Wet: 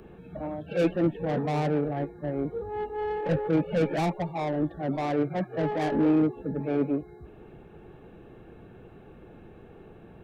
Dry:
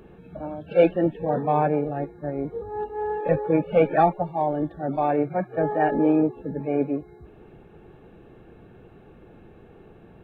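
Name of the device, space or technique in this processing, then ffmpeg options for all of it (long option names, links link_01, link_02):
one-band saturation: -filter_complex "[0:a]acrossover=split=350|3100[link_01][link_02][link_03];[link_02]asoftclip=type=tanh:threshold=-29dB[link_04];[link_01][link_04][link_03]amix=inputs=3:normalize=0"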